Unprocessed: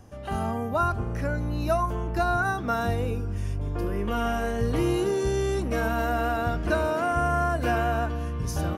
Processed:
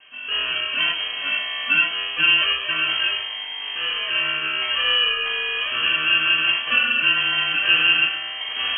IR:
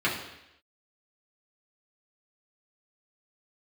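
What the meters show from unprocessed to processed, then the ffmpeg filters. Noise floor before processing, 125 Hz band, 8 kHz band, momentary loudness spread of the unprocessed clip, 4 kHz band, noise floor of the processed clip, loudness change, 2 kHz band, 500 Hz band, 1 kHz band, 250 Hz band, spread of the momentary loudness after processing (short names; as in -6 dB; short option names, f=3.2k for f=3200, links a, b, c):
-31 dBFS, -19.5 dB, under -40 dB, 6 LU, +25.5 dB, -31 dBFS, +8.0 dB, +14.5 dB, -12.5 dB, -4.0 dB, -13.0 dB, 9 LU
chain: -filter_complex "[0:a]acrusher=samples=36:mix=1:aa=0.000001,lowshelf=f=390:t=q:w=3:g=-6.5[a];[1:a]atrim=start_sample=2205,afade=t=out:st=0.18:d=0.01,atrim=end_sample=8379[b];[a][b]afir=irnorm=-1:irlink=0,lowpass=f=2.8k:t=q:w=0.5098,lowpass=f=2.8k:t=q:w=0.6013,lowpass=f=2.8k:t=q:w=0.9,lowpass=f=2.8k:t=q:w=2.563,afreqshift=-3300,volume=-5dB"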